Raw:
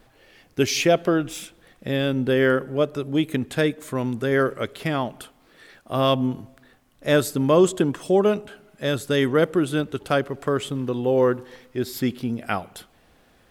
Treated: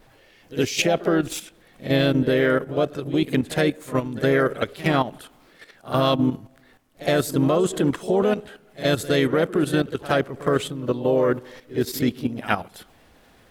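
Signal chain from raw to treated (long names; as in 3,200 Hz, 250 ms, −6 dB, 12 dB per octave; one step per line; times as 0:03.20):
output level in coarse steps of 12 dB
pitch-shifted copies added +3 semitones −8 dB
echo ahead of the sound 66 ms −17 dB
level +5 dB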